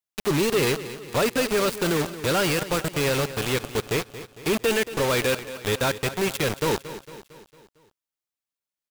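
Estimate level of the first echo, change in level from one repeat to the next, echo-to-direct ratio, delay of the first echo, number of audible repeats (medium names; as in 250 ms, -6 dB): -14.0 dB, -5.5 dB, -12.5 dB, 227 ms, 4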